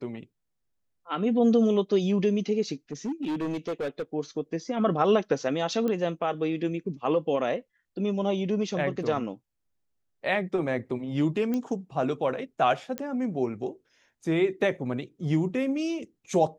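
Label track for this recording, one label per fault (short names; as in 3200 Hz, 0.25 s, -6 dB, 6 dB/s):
2.920000	4.020000	clipped -26.5 dBFS
5.880000	5.880000	pop -18 dBFS
11.540000	11.540000	pop -18 dBFS
12.980000	12.980000	pop -17 dBFS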